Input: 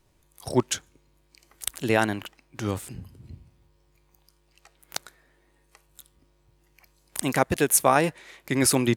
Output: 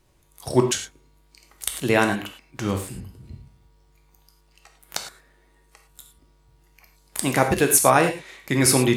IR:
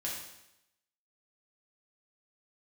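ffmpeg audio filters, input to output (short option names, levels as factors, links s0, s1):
-filter_complex "[0:a]asplit=2[s0][s1];[1:a]atrim=start_sample=2205,atrim=end_sample=3528,asetrate=29106,aresample=44100[s2];[s1][s2]afir=irnorm=-1:irlink=0,volume=0.631[s3];[s0][s3]amix=inputs=2:normalize=0,volume=0.891"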